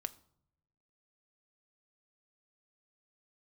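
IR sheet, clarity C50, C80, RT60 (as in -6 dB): 19.5 dB, 23.0 dB, 0.70 s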